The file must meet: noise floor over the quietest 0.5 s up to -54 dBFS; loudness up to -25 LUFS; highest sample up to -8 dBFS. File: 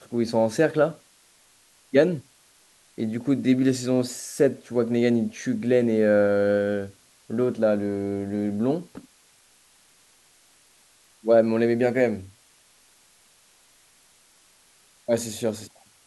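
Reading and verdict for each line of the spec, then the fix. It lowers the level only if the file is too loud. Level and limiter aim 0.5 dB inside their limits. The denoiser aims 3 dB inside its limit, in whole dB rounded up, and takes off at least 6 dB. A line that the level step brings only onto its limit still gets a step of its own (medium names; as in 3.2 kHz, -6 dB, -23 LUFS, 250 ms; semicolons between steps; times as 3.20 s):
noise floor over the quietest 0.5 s -59 dBFS: pass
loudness -23.5 LUFS: fail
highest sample -6.0 dBFS: fail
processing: trim -2 dB; peak limiter -8.5 dBFS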